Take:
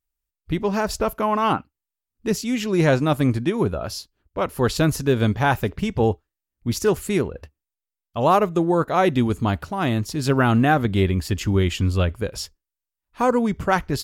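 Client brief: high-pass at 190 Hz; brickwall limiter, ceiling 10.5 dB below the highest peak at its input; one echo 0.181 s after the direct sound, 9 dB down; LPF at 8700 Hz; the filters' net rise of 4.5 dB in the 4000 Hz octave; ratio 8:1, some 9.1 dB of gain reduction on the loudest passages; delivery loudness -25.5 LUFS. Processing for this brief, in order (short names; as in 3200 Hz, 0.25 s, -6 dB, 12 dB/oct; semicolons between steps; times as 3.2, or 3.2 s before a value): HPF 190 Hz; LPF 8700 Hz; bell 4000 Hz +6 dB; compressor 8:1, threshold -23 dBFS; limiter -21 dBFS; echo 0.181 s -9 dB; gain +5.5 dB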